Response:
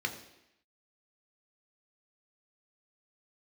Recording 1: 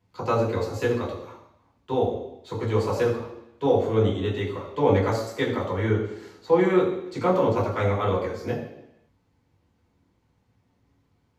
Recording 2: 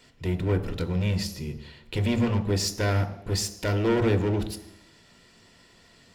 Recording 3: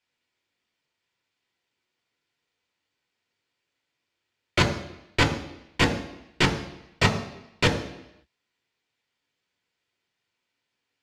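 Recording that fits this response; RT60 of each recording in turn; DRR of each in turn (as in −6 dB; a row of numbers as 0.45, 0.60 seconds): 3; 0.85, 0.85, 0.85 seconds; −5.5, 9.0, 3.5 decibels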